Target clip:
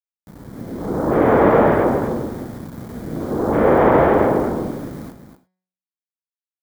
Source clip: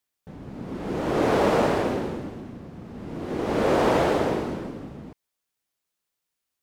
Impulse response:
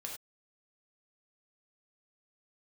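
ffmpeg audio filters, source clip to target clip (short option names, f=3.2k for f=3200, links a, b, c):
-filter_complex "[0:a]afwtdn=0.0178,aeval=exprs='val(0)*gte(abs(val(0)),0.00841)':c=same,acrossover=split=2700[a][b];[b]acompressor=threshold=-60dB:ratio=4:attack=1:release=60[c];[a][c]amix=inputs=2:normalize=0,equalizer=f=2.7k:w=4.3:g=-12,bandreject=f=184.3:t=h:w=4,bandreject=f=368.6:t=h:w=4,bandreject=f=552.9:t=h:w=4,bandreject=f=737.2:t=h:w=4,bandreject=f=921.5:t=h:w=4,bandreject=f=1.1058k:t=h:w=4,bandreject=f=1.2901k:t=h:w=4,bandreject=f=1.4744k:t=h:w=4,bandreject=f=1.6587k:t=h:w=4,bandreject=f=1.843k:t=h:w=4,bandreject=f=2.0273k:t=h:w=4,bandreject=f=2.2116k:t=h:w=4,bandreject=f=2.3959k:t=h:w=4,bandreject=f=2.5802k:t=h:w=4,bandreject=f=2.7645k:t=h:w=4,bandreject=f=2.9488k:t=h:w=4,bandreject=f=3.1331k:t=h:w=4,bandreject=f=3.3174k:t=h:w=4,bandreject=f=3.5017k:t=h:w=4,bandreject=f=3.686k:t=h:w=4,bandreject=f=3.8703k:t=h:w=4,bandreject=f=4.0546k:t=h:w=4,bandreject=f=4.2389k:t=h:w=4,bandreject=f=4.4232k:t=h:w=4,bandreject=f=4.6075k:t=h:w=4,bandreject=f=4.7918k:t=h:w=4,bandreject=f=4.9761k:t=h:w=4,bandreject=f=5.1604k:t=h:w=4,bandreject=f=5.3447k:t=h:w=4,bandreject=f=5.529k:t=h:w=4,bandreject=f=5.7133k:t=h:w=4,bandreject=f=5.8976k:t=h:w=4,dynaudnorm=f=160:g=9:m=6dB,aemphasis=mode=production:type=50kf,aecho=1:1:246:0.335,asplit=2[d][e];[1:a]atrim=start_sample=2205[f];[e][f]afir=irnorm=-1:irlink=0,volume=-4dB[g];[d][g]amix=inputs=2:normalize=0,volume=-1dB"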